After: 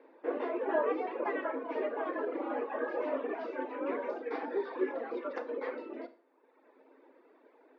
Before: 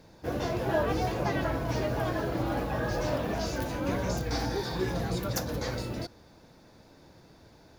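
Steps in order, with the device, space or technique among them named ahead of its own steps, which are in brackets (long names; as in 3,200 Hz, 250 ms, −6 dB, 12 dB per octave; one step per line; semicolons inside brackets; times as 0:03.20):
sub-octave bass pedal (sub-octave generator, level −1 dB; loudspeaker in its box 78–2,200 Hz, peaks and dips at 290 Hz −5 dB, 470 Hz +4 dB, 730 Hz −6 dB, 1,500 Hz −5 dB)
reverb reduction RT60 1.3 s
Chebyshev high-pass filter 260 Hz, order 6
four-comb reverb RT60 0.38 s, combs from 26 ms, DRR 11.5 dB
level +1 dB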